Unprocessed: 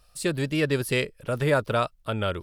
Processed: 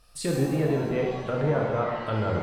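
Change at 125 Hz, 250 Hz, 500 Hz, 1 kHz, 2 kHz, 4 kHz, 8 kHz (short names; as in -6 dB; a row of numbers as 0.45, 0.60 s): +1.0 dB, +1.0 dB, 0.0 dB, -0.5 dB, -7.0 dB, -8.0 dB, n/a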